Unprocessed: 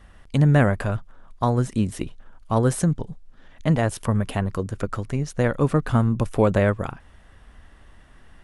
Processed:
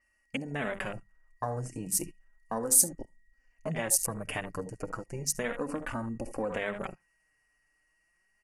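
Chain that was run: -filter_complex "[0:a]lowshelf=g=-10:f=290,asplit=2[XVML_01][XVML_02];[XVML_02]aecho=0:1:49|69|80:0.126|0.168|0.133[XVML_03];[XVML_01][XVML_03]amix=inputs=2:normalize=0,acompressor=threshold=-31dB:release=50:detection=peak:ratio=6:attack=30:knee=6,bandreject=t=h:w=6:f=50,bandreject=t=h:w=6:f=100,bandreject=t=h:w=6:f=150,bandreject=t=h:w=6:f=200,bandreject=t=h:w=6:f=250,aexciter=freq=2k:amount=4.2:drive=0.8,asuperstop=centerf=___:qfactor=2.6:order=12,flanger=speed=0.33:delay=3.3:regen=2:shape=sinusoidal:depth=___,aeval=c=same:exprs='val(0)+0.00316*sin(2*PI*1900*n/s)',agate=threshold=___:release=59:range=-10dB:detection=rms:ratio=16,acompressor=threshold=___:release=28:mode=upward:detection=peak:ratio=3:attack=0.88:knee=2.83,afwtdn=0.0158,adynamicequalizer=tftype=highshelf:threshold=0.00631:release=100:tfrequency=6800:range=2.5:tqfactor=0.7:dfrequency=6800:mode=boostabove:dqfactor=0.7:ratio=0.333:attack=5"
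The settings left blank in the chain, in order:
3600, 3.5, -41dB, -50dB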